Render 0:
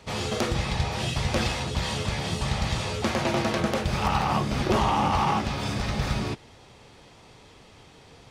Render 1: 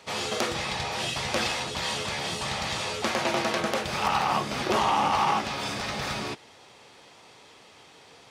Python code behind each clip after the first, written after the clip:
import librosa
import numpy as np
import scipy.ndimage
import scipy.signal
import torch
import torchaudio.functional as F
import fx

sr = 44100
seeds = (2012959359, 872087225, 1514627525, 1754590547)

y = fx.highpass(x, sr, hz=520.0, slope=6)
y = F.gain(torch.from_numpy(y), 2.0).numpy()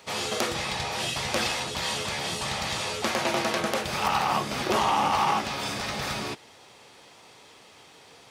y = fx.high_shelf(x, sr, hz=12000.0, db=10.5)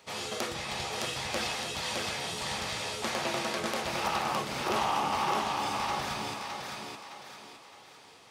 y = fx.echo_thinned(x, sr, ms=613, feedback_pct=40, hz=190.0, wet_db=-3)
y = F.gain(torch.from_numpy(y), -6.5).numpy()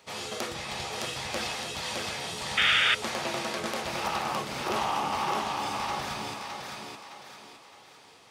y = fx.spec_paint(x, sr, seeds[0], shape='noise', start_s=2.57, length_s=0.38, low_hz=1200.0, high_hz=3700.0, level_db=-23.0)